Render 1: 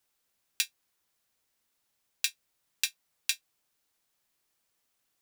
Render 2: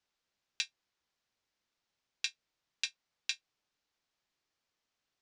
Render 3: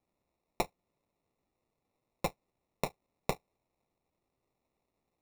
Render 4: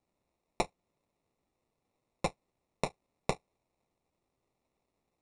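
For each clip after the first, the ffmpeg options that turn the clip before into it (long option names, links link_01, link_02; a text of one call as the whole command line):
ffmpeg -i in.wav -af "lowpass=frequency=6100:width=0.5412,lowpass=frequency=6100:width=1.3066,volume=-4dB" out.wav
ffmpeg -i in.wav -af "acrusher=samples=28:mix=1:aa=0.000001,volume=3dB" out.wav
ffmpeg -i in.wav -af "aresample=22050,aresample=44100,volume=1dB" out.wav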